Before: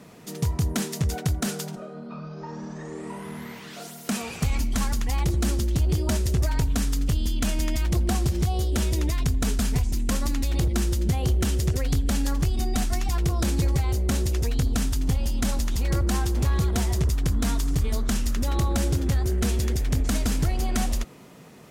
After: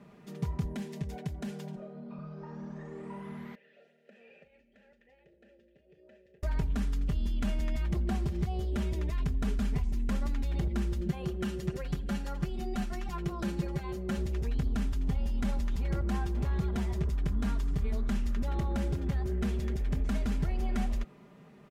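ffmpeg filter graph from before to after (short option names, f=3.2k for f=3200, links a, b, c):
-filter_complex "[0:a]asettb=1/sr,asplit=3[a][b][c];[a]atrim=end=0.654[d];[b]atrim=start=0.65:end=2.19,asetpts=PTS-STARTPTS,afade=t=in:d=0.004:c=qsin,afade=t=out:st=1.536:d=0.004:c=qsin,acrossover=split=120|3600[e][f][g];[e]acompressor=threshold=-30dB:ratio=4[h];[f]acompressor=threshold=-29dB:ratio=4[i];[g]acompressor=threshold=-35dB:ratio=4[j];[h][i][j]amix=inputs=3:normalize=0,equalizer=f=1.3k:w=4.9:g=-10.5[k];[c]atrim=start=2.186[l];[d][k]acrossfade=d=0.004:c1=hsin:c2=qsin[m];[m][l]acrossfade=d=0.004:c1=qsin:c2=hsin,asettb=1/sr,asplit=3[n][o][p];[n]atrim=end=3.554[q];[o]atrim=start=3.55:end=6.43,asetpts=PTS-STARTPTS,afade=t=in:d=0.004:c=qsin,afade=t=out:st=2.876:d=0.004:c=qsin,asplit=2[r][s];[s]adelay=38,volume=-12.5dB[t];[r][t]amix=inputs=2:normalize=0,atrim=end_sample=127008,acompressor=threshold=-30dB:ratio=4:attack=3.2:release=140:knee=1:detection=peak,asplit=3[u][v][w];[u]bandpass=f=530:t=q:w=8,volume=0dB[x];[v]bandpass=f=1.84k:t=q:w=8,volume=-6dB[y];[w]bandpass=f=2.48k:t=q:w=8,volume=-9dB[z];[x][y][z]amix=inputs=3:normalize=0[aa];[p]atrim=start=6.426[ab];[q][aa]acrossfade=d=0.004:c1=hsin:c2=qsin[ac];[ac][ab]acrossfade=d=0.004:c1=qsin:c2=hsin,asettb=1/sr,asplit=3[ad][ae][af];[ad]atrim=end=11.014[ag];[ae]atrim=start=11.01:end=14.18,asetpts=PTS-STARTPTS,afade=t=in:d=0.004:c=qsin,afade=t=out:st=3.166:d=0.004:c=qsin,lowshelf=f=110:g=-8.5,aecho=1:1:5.7:0.58,atrim=end_sample=139797[ah];[af]atrim=start=14.176[ai];[ag][ah]acrossfade=d=0.004:c1=hsin:c2=qsin[aj];[aj][ai]acrossfade=d=0.004:c1=qsin:c2=hsin,bass=f=250:g=2,treble=f=4k:g=-14,aecho=1:1:5:0.51,volume=-9dB"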